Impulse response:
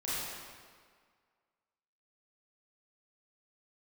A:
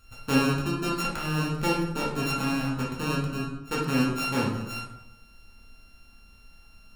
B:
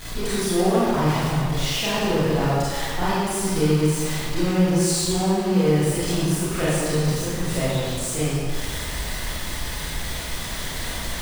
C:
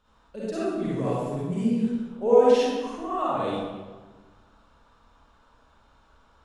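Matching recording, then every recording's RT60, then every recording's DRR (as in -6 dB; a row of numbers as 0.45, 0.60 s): B; 0.90, 1.8, 1.3 s; -5.5, -10.5, -9.0 dB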